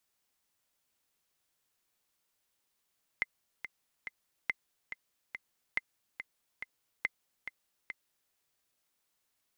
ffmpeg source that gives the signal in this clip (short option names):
-f lavfi -i "aevalsrc='pow(10,(-16.5-10*gte(mod(t,3*60/141),60/141))/20)*sin(2*PI*2070*mod(t,60/141))*exp(-6.91*mod(t,60/141)/0.03)':d=5.1:s=44100"